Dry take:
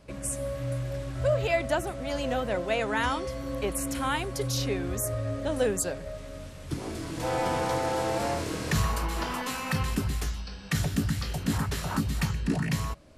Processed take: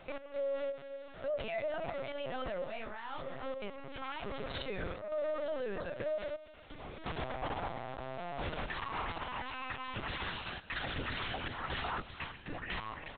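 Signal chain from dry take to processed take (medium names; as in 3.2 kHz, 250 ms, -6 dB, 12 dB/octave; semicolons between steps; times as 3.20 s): 4.01–4.66 s: comb filter that takes the minimum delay 7.4 ms; high-pass 470 Hz 12 dB/octave; feedback delay 350 ms, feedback 18%, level -18 dB; spring tank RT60 1.5 s, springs 49 ms, chirp 80 ms, DRR 19.5 dB; trance gate "x.xx....xxxx.xxx" 85 bpm -12 dB; LPC vocoder at 8 kHz pitch kept; 7.94–8.49 s: compressor with a negative ratio -38 dBFS, ratio -0.5; peak limiter -36 dBFS, peak gain reduction 21 dB; 2.64–3.43 s: detune thickener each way 57 cents; trim +7 dB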